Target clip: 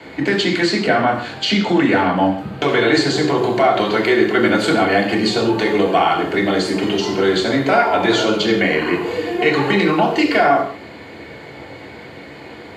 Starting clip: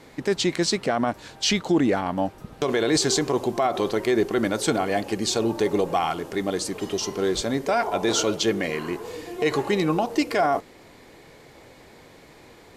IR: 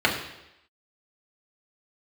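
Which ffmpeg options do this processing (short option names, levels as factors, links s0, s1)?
-filter_complex "[0:a]acrossover=split=83|940[s0][s1][s2];[s0]acompressor=threshold=0.001:ratio=4[s3];[s1]acompressor=threshold=0.0398:ratio=4[s4];[s2]acompressor=threshold=0.0355:ratio=4[s5];[s3][s4][s5]amix=inputs=3:normalize=0[s6];[1:a]atrim=start_sample=2205,afade=t=out:st=0.24:d=0.01,atrim=end_sample=11025[s7];[s6][s7]afir=irnorm=-1:irlink=0,volume=0.668"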